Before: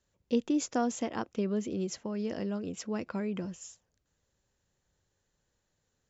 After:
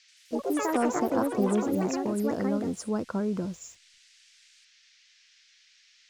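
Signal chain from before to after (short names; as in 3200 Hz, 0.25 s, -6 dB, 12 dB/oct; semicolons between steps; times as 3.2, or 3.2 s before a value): opening faded in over 1.12 s; backlash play -55.5 dBFS; band shelf 2600 Hz -15.5 dB 1.2 oct; band noise 1700–6100 Hz -66 dBFS; dynamic EQ 5400 Hz, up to -4 dB, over -58 dBFS, Q 1.4; echoes that change speed 84 ms, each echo +5 st, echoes 3; gain +5 dB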